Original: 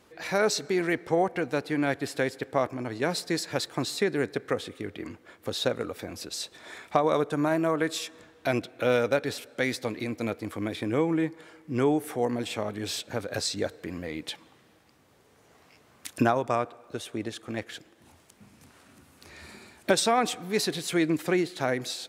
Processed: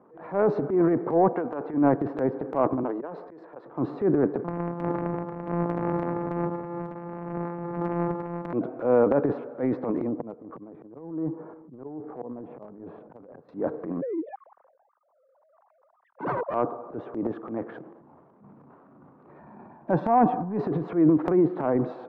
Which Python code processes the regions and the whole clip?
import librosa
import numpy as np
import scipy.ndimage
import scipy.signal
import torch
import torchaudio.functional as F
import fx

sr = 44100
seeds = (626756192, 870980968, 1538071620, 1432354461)

y = fx.chain(x, sr, fx.transient(attack_db=-4, sustain_db=2),
    fx.highpass(hz=660.0, slope=6), at=(1.33, 1.74))
y = fx.chain(y, sr, fx.highpass(hz=330.0, slope=12),
    fx.auto_swell(attack_ms=299.0), at=(2.83, 3.66))
y = fx.chain(y, sr, fx.sample_sort(block=256),
    fx.over_compress(threshold_db=-31.0, ratio=-0.5),
    fx.echo_single(ms=339, db=-6.5), at=(4.44, 8.53))
y = fx.chain(y, sr, fx.spacing_loss(db_at_10k=43),
    fx.auto_swell(attack_ms=588.0),
    fx.doppler_dist(depth_ms=0.22), at=(10.07, 13.49))
y = fx.chain(y, sr, fx.sine_speech(),
    fx.lowpass(hz=1300.0, slope=6),
    fx.overflow_wrap(gain_db=23.0), at=(14.01, 16.54))
y = fx.chain(y, sr, fx.lowpass(hz=2700.0, slope=6),
    fx.comb(ms=1.2, depth=0.53), at=(19.39, 20.58))
y = scipy.signal.sosfilt(scipy.signal.cheby1(3, 1.0, [140.0, 1100.0], 'bandpass', fs=sr, output='sos'), y)
y = fx.dynamic_eq(y, sr, hz=290.0, q=3.2, threshold_db=-44.0, ratio=4.0, max_db=4)
y = fx.transient(y, sr, attack_db=-9, sustain_db=9)
y = y * 10.0 ** (5.0 / 20.0)